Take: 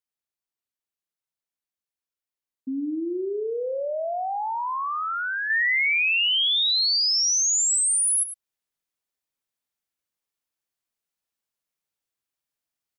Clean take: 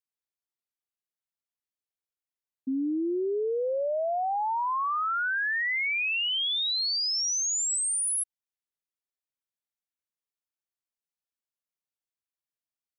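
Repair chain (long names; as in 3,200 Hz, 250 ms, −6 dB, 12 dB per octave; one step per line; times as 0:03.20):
echo removal 103 ms −12.5 dB
level 0 dB, from 0:05.50 −6 dB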